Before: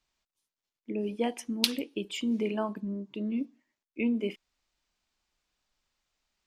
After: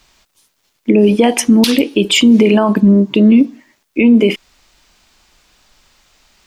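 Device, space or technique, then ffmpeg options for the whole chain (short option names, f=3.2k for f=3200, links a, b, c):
loud club master: -af "acompressor=threshold=-31dB:ratio=2.5,asoftclip=type=hard:threshold=-16.5dB,alimiter=level_in=28.5dB:limit=-1dB:release=50:level=0:latency=1,volume=-1dB"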